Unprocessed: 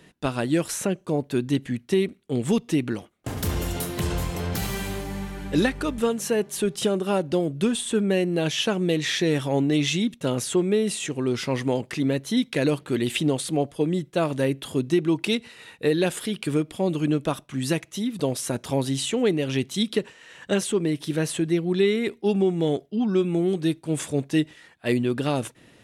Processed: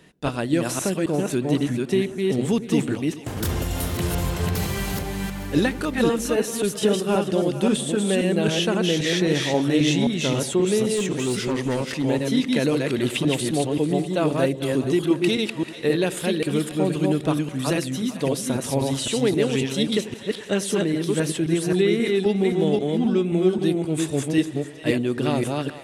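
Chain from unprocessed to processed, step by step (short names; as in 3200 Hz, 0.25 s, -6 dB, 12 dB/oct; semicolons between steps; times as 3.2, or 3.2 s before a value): reverse delay 0.265 s, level -2 dB; split-band echo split 540 Hz, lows 92 ms, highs 0.441 s, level -14.5 dB; 10.96–12.04 hard clip -18.5 dBFS, distortion -28 dB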